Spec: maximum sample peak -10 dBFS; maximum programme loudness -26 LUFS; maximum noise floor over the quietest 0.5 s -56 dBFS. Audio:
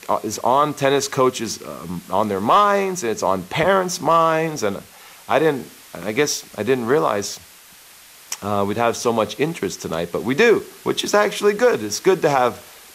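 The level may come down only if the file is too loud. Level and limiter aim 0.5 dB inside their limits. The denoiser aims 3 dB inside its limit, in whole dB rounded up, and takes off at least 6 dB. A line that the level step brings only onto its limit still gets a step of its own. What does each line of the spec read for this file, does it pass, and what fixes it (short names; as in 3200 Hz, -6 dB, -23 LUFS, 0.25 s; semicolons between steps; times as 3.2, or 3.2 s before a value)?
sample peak -5.0 dBFS: fail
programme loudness -19.5 LUFS: fail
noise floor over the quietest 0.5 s -46 dBFS: fail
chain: denoiser 6 dB, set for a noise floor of -46 dBFS; gain -7 dB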